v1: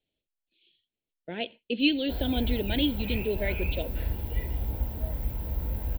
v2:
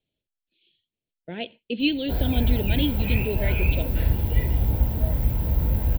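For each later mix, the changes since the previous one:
background +7.0 dB; master: add peaking EQ 130 Hz +6.5 dB 1.3 oct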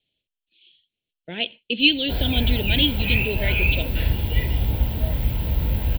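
master: add peaking EQ 3.1 kHz +12 dB 1.2 oct

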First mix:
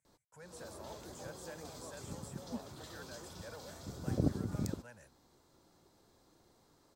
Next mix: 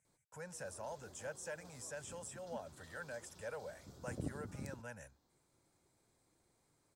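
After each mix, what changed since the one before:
speech +5.5 dB; background -10.5 dB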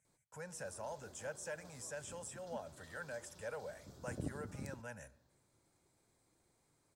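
reverb: on, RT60 1.0 s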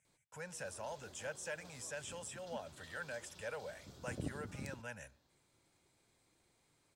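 speech: send -6.0 dB; master: add peaking EQ 2.9 kHz +8.5 dB 1.3 oct

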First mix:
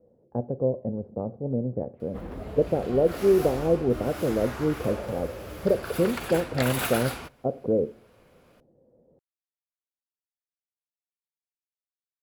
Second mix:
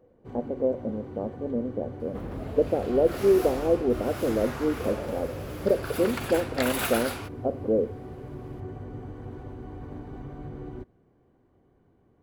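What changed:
speech: add brick-wall FIR high-pass 190 Hz; first sound: unmuted

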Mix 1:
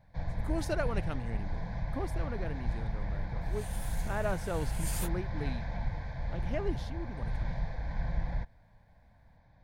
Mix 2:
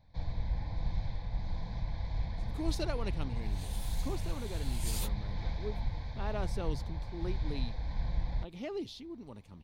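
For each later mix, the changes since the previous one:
speech: entry +2.10 s; master: add fifteen-band graphic EQ 160 Hz -5 dB, 630 Hz -6 dB, 1.6 kHz -10 dB, 4 kHz +7 dB, 10 kHz -3 dB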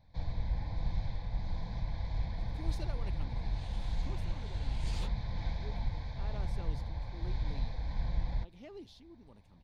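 speech -10.5 dB; second sound: add distance through air 150 m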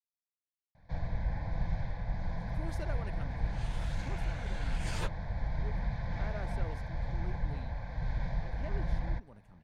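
first sound: entry +0.75 s; second sound +6.0 dB; master: add fifteen-band graphic EQ 160 Hz +5 dB, 630 Hz +6 dB, 1.6 kHz +10 dB, 4 kHz -7 dB, 10 kHz +3 dB

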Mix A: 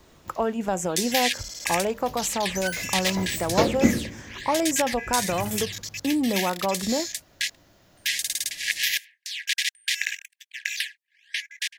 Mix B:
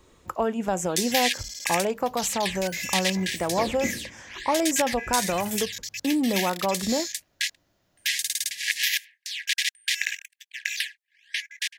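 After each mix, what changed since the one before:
second sound -12.0 dB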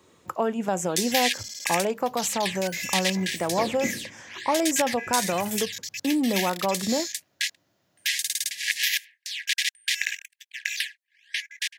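master: add high-pass 99 Hz 24 dB/octave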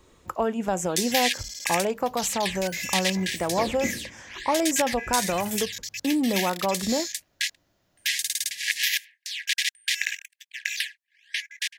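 master: remove high-pass 99 Hz 24 dB/octave

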